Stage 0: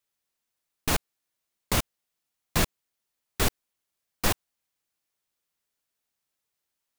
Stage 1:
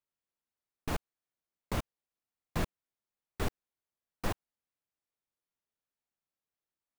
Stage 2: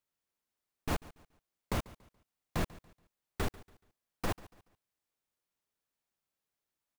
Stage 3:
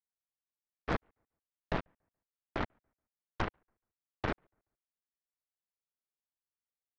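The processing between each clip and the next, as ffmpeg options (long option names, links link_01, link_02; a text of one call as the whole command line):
ffmpeg -i in.wav -af "highshelf=frequency=2400:gain=-12,volume=-6.5dB" out.wav
ffmpeg -i in.wav -af "alimiter=level_in=2dB:limit=-24dB:level=0:latency=1,volume=-2dB,aecho=1:1:142|284|426:0.1|0.033|0.0109,volume=3.5dB" out.wav
ffmpeg -i in.wav -af "highpass=frequency=320:width_type=q:width=0.5412,highpass=frequency=320:width_type=q:width=1.307,lowpass=frequency=2400:width_type=q:width=0.5176,lowpass=frequency=2400:width_type=q:width=0.7071,lowpass=frequency=2400:width_type=q:width=1.932,afreqshift=-390,aeval=exprs='0.0531*(cos(1*acos(clip(val(0)/0.0531,-1,1)))-cos(1*PI/2))+0.00841*(cos(4*acos(clip(val(0)/0.0531,-1,1)))-cos(4*PI/2))+0.00841*(cos(7*acos(clip(val(0)/0.0531,-1,1)))-cos(7*PI/2))':channel_layout=same,volume=5dB" out.wav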